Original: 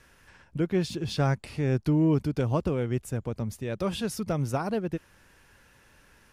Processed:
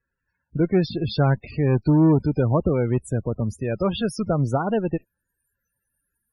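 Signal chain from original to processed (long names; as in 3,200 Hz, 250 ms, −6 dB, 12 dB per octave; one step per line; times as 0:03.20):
noise reduction from a noise print of the clip's start 27 dB
harmonic generator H 4 −19 dB, 6 −20 dB, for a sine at −13.5 dBFS
spectral peaks only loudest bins 32
level +6.5 dB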